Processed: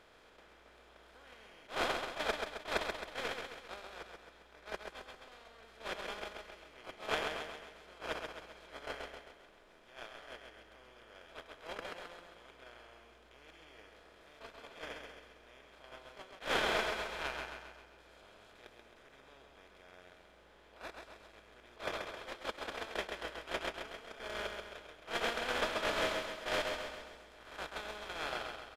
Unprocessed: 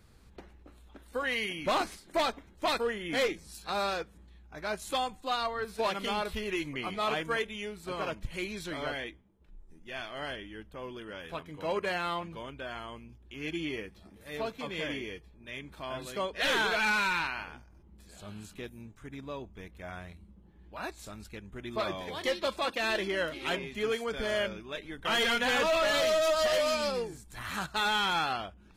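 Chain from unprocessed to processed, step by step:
compressor on every frequency bin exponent 0.2
noise gate −14 dBFS, range −47 dB
repeating echo 133 ms, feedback 52%, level −5 dB
level that may rise only so fast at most 200 dB per second
level +9 dB

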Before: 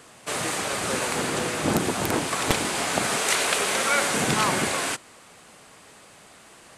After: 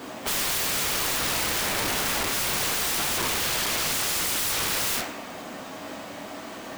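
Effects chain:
each half-wave held at its own peak
sound drawn into the spectrogram rise, 0:03.16–0:04.52, 300–2,700 Hz −12 dBFS
graphic EQ with 15 bands 250 Hz +11 dB, 630 Hz +6 dB, 10,000 Hz −8 dB
coupled-rooms reverb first 0.4 s, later 1.6 s, from −25 dB, DRR 0 dB
downward compressor 10 to 1, threshold −17 dBFS, peak gain reduction 18 dB
pitch-shifted copies added +5 semitones −10 dB
low-shelf EQ 410 Hz −4.5 dB
wrap-around overflow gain 23.5 dB
level +2 dB

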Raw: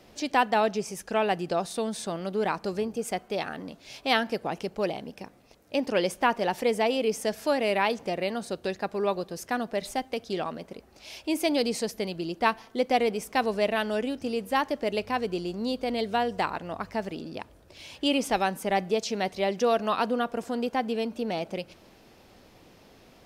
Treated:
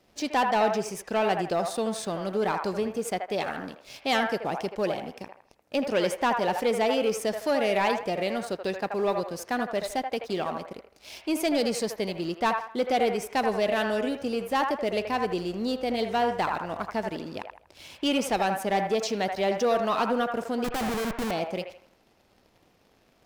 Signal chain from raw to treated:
leveller curve on the samples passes 2
0:20.64–0:21.31: comparator with hysteresis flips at −28 dBFS
delay with a band-pass on its return 80 ms, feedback 32%, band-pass 1,100 Hz, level −3.5 dB
level −6.5 dB

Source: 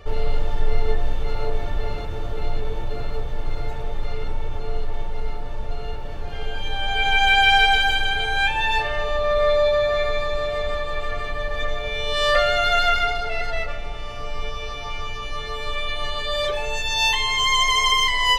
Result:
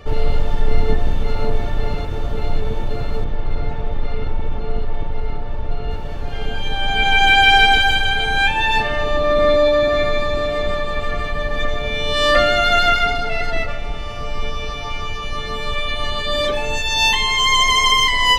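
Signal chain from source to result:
sub-octave generator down 1 octave, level −1 dB
0:03.24–0:05.91: high-frequency loss of the air 140 metres
level +4 dB

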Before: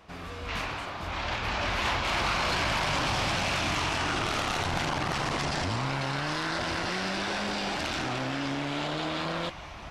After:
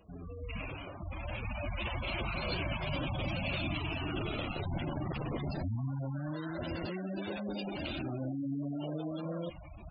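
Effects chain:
gate on every frequency bin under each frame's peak −10 dB strong
flat-topped bell 1,200 Hz −11 dB
level −1.5 dB

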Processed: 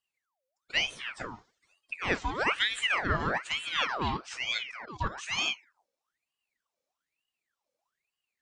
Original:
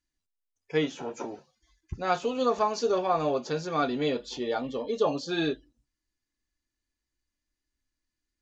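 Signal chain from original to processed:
0:04.63–0:05.18: output level in coarse steps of 13 dB
ring modulator whose carrier an LFO sweeps 1,700 Hz, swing 70%, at 1.1 Hz

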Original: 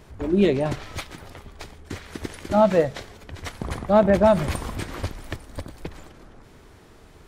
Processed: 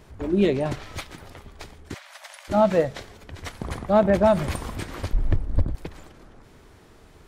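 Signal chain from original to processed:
0:01.94–0:02.48: Chebyshev high-pass filter 560 Hz, order 8
0:05.13–0:05.75: spectral tilt −4 dB per octave
level −1.5 dB

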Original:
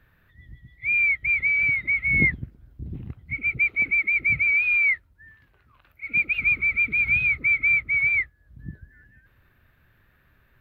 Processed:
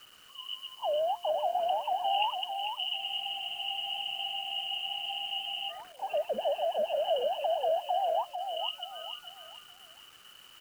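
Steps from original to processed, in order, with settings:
high-frequency loss of the air 78 metres
voice inversion scrambler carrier 3,000 Hz
downward compressor 2.5 to 1, threshold −37 dBFS, peak gain reduction 14 dB
hum removal 350 Hz, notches 3
bit reduction 10 bits
repeating echo 447 ms, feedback 34%, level −6.5 dB
frozen spectrum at 0:03.03, 2.67 s
level +3.5 dB

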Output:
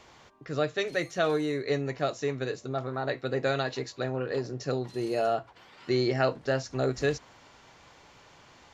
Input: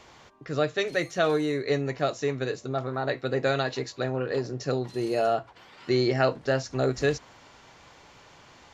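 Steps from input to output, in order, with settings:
level −2.5 dB

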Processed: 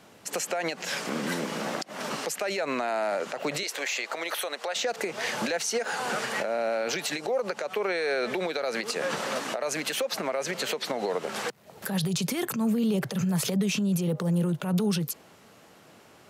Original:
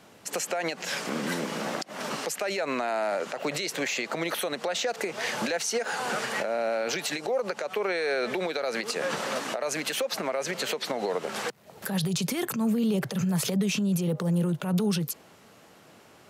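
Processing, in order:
0:03.63–0:04.76: high-pass filter 540 Hz 12 dB per octave

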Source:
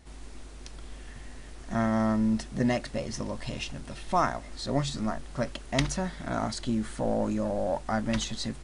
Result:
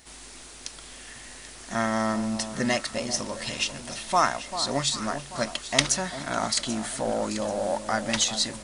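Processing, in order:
spectral tilt +3 dB per octave
delay that swaps between a low-pass and a high-pass 393 ms, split 1,100 Hz, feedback 63%, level −10 dB
level +4 dB

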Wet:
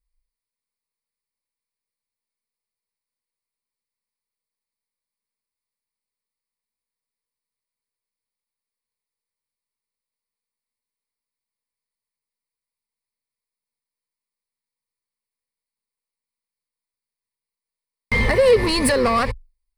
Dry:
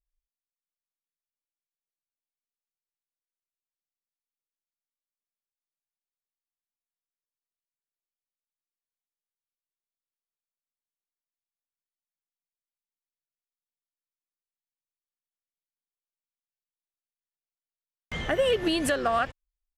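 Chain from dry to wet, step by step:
leveller curve on the samples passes 2
EQ curve with evenly spaced ripples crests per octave 0.92, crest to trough 13 dB
in parallel at +0.5 dB: brickwall limiter −22.5 dBFS, peak gain reduction 14 dB
on the sum: low-shelf EQ 75 Hz +5.5 dB

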